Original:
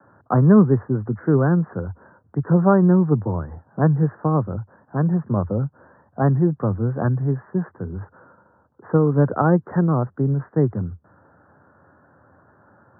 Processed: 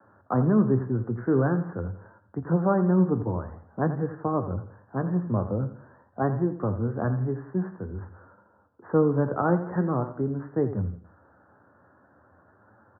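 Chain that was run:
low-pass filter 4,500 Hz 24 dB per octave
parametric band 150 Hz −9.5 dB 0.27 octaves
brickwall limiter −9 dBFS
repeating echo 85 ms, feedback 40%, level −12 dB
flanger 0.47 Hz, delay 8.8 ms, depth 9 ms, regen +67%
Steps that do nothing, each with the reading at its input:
low-pass filter 4,500 Hz: nothing at its input above 1,400 Hz

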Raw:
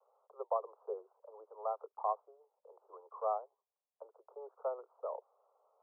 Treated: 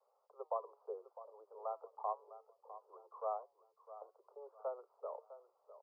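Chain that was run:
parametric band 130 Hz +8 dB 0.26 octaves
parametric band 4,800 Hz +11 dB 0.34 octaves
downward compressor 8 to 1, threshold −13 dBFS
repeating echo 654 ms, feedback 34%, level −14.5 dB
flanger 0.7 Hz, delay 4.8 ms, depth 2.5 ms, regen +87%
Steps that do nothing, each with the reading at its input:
parametric band 130 Hz: nothing at its input below 360 Hz
parametric band 4,800 Hz: nothing at its input above 1,400 Hz
downward compressor, threshold −13 dBFS: peak of its input −21.5 dBFS

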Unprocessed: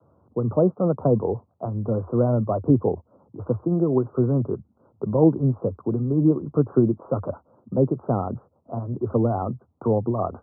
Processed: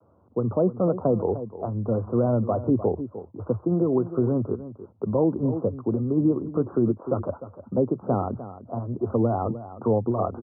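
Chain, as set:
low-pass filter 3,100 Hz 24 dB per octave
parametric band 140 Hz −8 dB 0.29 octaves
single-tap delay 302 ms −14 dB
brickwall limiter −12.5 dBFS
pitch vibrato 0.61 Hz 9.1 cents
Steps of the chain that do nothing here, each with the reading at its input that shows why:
low-pass filter 3,100 Hz: nothing at its input above 1,000 Hz

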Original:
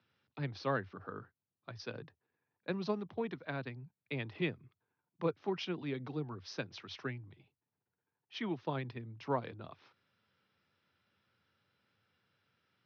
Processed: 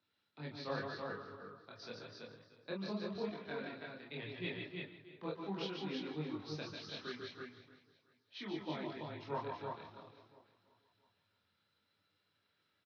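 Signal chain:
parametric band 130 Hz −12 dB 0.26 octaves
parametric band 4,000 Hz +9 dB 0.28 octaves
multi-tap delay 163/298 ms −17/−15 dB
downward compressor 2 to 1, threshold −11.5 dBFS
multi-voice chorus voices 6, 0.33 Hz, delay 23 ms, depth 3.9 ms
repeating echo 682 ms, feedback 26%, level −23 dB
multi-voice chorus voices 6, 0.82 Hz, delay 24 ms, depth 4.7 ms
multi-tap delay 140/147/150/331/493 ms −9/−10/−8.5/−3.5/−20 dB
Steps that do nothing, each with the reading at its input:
downward compressor, threshold −11.5 dBFS: peak of its input −21.0 dBFS

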